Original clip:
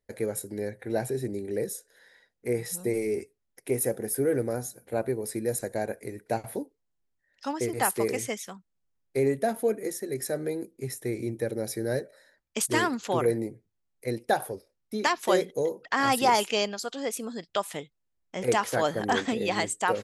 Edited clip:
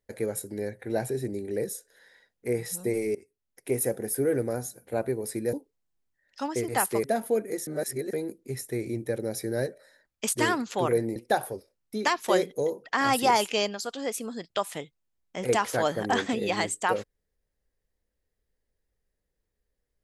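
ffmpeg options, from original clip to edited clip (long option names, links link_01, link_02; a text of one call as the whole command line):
ffmpeg -i in.wav -filter_complex "[0:a]asplit=7[link_01][link_02][link_03][link_04][link_05][link_06][link_07];[link_01]atrim=end=3.15,asetpts=PTS-STARTPTS,afade=type=out:start_time=3.146:duration=0.004:curve=hsin:silence=0.112202[link_08];[link_02]atrim=start=3.15:end=5.532,asetpts=PTS-STARTPTS,afade=type=in:duration=0.55:silence=0.112202[link_09];[link_03]atrim=start=6.578:end=8.092[link_10];[link_04]atrim=start=9.368:end=10.002[link_11];[link_05]atrim=start=9.998:end=10.462,asetpts=PTS-STARTPTS,areverse[link_12];[link_06]atrim=start=10.458:end=13.492[link_13];[link_07]atrim=start=14.148[link_14];[link_08][link_09]concat=n=2:v=0:a=1[link_15];[link_15][link_10]acrossfade=duration=0.004:curve1=hsin:curve2=hsin[link_16];[link_16][link_11]acrossfade=duration=0.004:curve1=hsin:curve2=hsin[link_17];[link_17][link_12]acrossfade=duration=0.004:curve1=hsin:curve2=hsin[link_18];[link_18][link_13]acrossfade=duration=0.004:curve1=hsin:curve2=hsin[link_19];[link_19][link_14]acrossfade=duration=0.004:curve1=hsin:curve2=hsin" out.wav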